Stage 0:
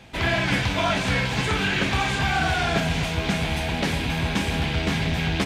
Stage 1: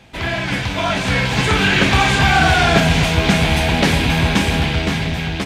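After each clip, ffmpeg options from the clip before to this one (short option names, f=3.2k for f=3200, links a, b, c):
-af "dynaudnorm=f=350:g=7:m=11.5dB,volume=1dB"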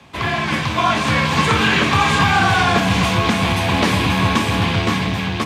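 -af "alimiter=limit=-6dB:level=0:latency=1:release=346,afreqshift=26,equalizer=f=1.1k:w=6.5:g=13"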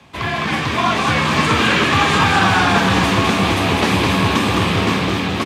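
-filter_complex "[0:a]asplit=8[a][b][c][d][e][f][g][h];[b]adelay=208,afreqshift=93,volume=-4dB[i];[c]adelay=416,afreqshift=186,volume=-9.7dB[j];[d]adelay=624,afreqshift=279,volume=-15.4dB[k];[e]adelay=832,afreqshift=372,volume=-21dB[l];[f]adelay=1040,afreqshift=465,volume=-26.7dB[m];[g]adelay=1248,afreqshift=558,volume=-32.4dB[n];[h]adelay=1456,afreqshift=651,volume=-38.1dB[o];[a][i][j][k][l][m][n][o]amix=inputs=8:normalize=0,volume=-1dB"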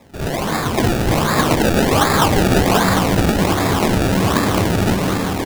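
-af "acrusher=samples=29:mix=1:aa=0.000001:lfo=1:lforange=29:lforate=1.3"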